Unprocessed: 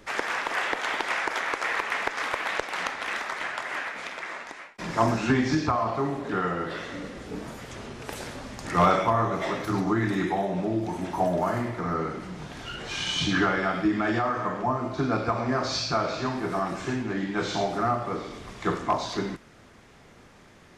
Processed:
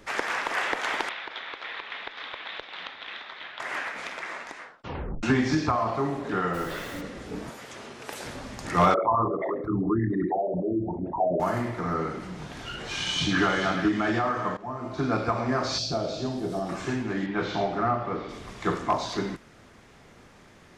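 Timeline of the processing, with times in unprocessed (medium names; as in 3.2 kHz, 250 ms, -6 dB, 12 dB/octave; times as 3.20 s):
1.09–3.60 s: four-pole ladder low-pass 3.9 kHz, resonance 70%
4.57 s: tape stop 0.66 s
6.53–7.00 s: added noise pink -44 dBFS
7.50–8.24 s: high-pass 370 Hz 6 dB/octave
8.94–11.40 s: resonances exaggerated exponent 3
12.94–13.45 s: echo throw 430 ms, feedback 30%, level -9.5 dB
14.57–15.09 s: fade in, from -16 dB
15.78–16.69 s: high-order bell 1.5 kHz -13.5 dB
17.26–18.29 s: low-pass 3.5 kHz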